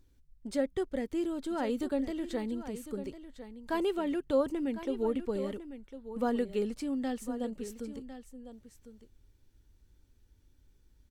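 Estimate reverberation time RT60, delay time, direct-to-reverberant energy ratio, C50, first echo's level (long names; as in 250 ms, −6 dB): no reverb audible, 1,053 ms, no reverb audible, no reverb audible, −12.5 dB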